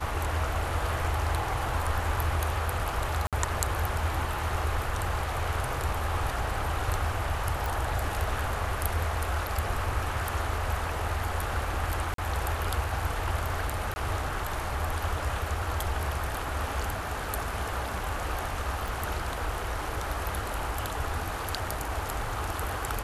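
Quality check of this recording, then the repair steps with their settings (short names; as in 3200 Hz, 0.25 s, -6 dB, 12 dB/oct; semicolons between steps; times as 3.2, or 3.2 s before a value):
3.27–3.33 gap 57 ms
7.66 pop
12.14–12.18 gap 43 ms
13.94–13.96 gap 20 ms
18.88 pop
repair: de-click; interpolate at 3.27, 57 ms; interpolate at 12.14, 43 ms; interpolate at 13.94, 20 ms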